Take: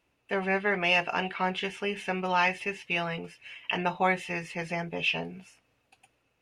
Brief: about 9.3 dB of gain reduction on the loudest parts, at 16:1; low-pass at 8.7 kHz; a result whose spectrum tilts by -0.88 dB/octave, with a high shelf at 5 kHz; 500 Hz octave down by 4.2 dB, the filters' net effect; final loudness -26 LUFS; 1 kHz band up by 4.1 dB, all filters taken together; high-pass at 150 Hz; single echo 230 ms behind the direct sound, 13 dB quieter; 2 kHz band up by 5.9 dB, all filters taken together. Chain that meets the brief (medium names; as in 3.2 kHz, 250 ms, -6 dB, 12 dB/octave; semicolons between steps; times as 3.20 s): high-pass 150 Hz; low-pass 8.7 kHz; peaking EQ 500 Hz -8.5 dB; peaking EQ 1 kHz +7 dB; peaking EQ 2 kHz +5 dB; treble shelf 5 kHz +7 dB; compression 16:1, threshold -24 dBFS; delay 230 ms -13 dB; trim +3.5 dB